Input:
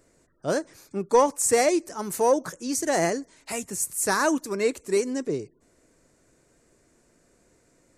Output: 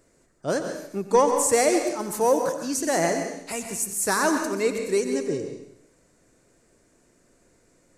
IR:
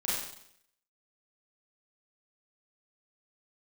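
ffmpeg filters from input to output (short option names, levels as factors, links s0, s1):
-filter_complex "[0:a]asplit=2[s0][s1];[1:a]atrim=start_sample=2205,adelay=92[s2];[s1][s2]afir=irnorm=-1:irlink=0,volume=0.251[s3];[s0][s3]amix=inputs=2:normalize=0"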